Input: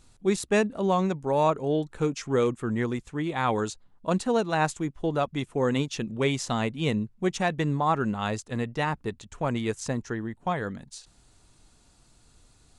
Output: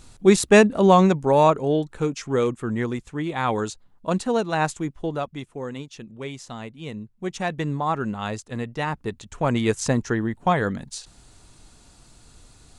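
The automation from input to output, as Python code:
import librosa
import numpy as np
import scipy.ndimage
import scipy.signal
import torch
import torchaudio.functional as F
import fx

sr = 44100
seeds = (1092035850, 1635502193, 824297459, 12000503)

y = fx.gain(x, sr, db=fx.line((1.02, 9.5), (2.03, 2.0), (4.92, 2.0), (5.74, -8.5), (6.89, -8.5), (7.49, 0.0), (8.74, 0.0), (9.79, 8.0)))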